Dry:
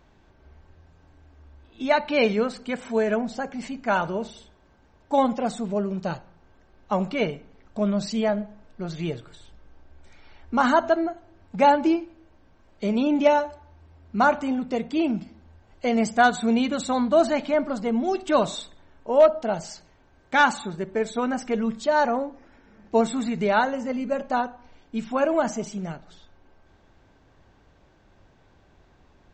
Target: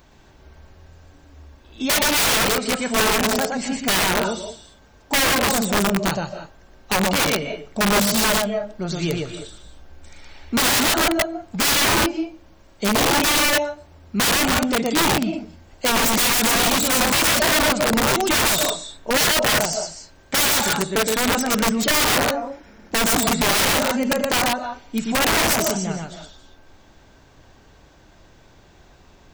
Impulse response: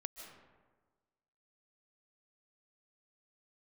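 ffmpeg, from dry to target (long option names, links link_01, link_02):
-filter_complex "[0:a]crystalizer=i=2.5:c=0,asplit=2[link_01][link_02];[1:a]atrim=start_sample=2205,afade=type=out:start_time=0.26:duration=0.01,atrim=end_sample=11907,adelay=119[link_03];[link_02][link_03]afir=irnorm=-1:irlink=0,volume=1dB[link_04];[link_01][link_04]amix=inputs=2:normalize=0,aeval=exprs='(mod(7.5*val(0)+1,2)-1)/7.5':channel_layout=same,volume=4.5dB"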